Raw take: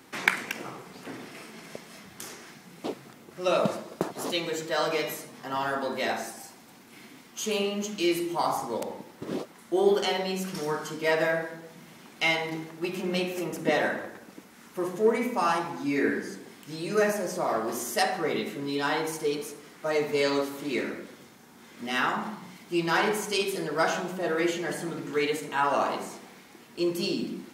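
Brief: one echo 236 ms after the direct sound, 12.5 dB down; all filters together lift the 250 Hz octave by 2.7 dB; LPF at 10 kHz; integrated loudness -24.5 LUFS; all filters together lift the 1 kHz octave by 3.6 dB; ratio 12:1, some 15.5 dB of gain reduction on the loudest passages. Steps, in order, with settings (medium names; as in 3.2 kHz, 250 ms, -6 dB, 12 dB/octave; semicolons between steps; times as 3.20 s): low-pass 10 kHz; peaking EQ 250 Hz +3.5 dB; peaking EQ 1 kHz +4.5 dB; compression 12:1, threshold -31 dBFS; delay 236 ms -12.5 dB; trim +11.5 dB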